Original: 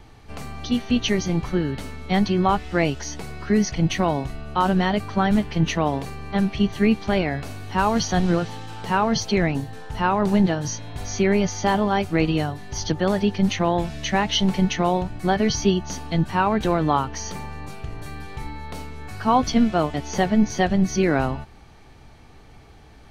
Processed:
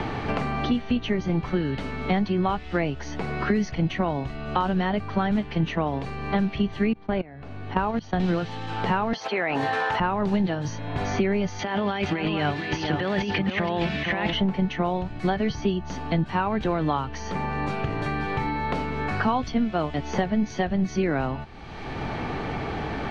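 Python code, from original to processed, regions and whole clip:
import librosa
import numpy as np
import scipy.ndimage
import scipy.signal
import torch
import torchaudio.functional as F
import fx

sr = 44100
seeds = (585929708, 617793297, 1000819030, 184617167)

y = fx.chain(x, sr, fx.lowpass(hz=1500.0, slope=6),
    fx.level_steps(step_db=22), at=(6.93, 8.2))
y = fx.chain(y, sr, fx.highpass(hz=660.0, slope=12),
    fx.env_flatten(amount_pct=100), at=(9.13, 10.0))
y = fx.chain(y, sr, fx.weighting(curve='D'),
    fx.over_compress(threshold_db=-27.0, ratio=-1.0),
    fx.echo_single(ms=467, db=-7.5), at=(11.59, 14.33))
y = scipy.signal.sosfilt(scipy.signal.butter(2, 3100.0, 'lowpass', fs=sr, output='sos'), y)
y = fx.band_squash(y, sr, depth_pct=100)
y = y * 10.0 ** (-4.0 / 20.0)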